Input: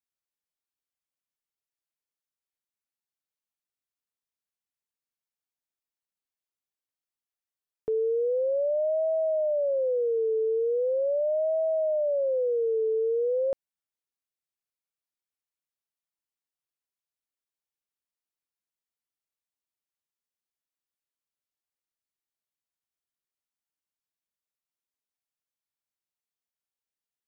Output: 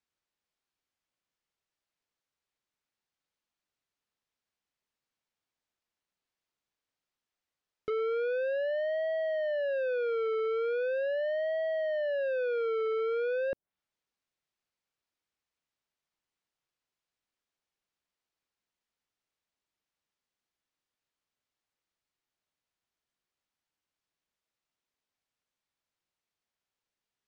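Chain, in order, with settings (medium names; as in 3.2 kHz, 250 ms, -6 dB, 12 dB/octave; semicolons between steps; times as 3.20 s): low-pass that closes with the level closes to 460 Hz, closed at -27 dBFS; saturation -36.5 dBFS, distortion -11 dB; distance through air 89 m; trim +7.5 dB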